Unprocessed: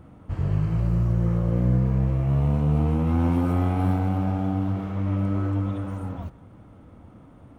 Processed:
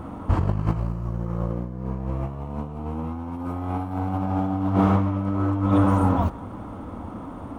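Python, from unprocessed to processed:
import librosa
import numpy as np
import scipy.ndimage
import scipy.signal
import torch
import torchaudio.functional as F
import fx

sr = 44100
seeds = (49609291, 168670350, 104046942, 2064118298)

y = fx.graphic_eq_10(x, sr, hz=(250, 1000, 2000), db=(4, 9, -3))
y = fx.over_compress(y, sr, threshold_db=-26.0, ratio=-0.5)
y = fx.peak_eq(y, sr, hz=140.0, db=-6.5, octaves=0.58)
y = y * 10.0 ** (5.0 / 20.0)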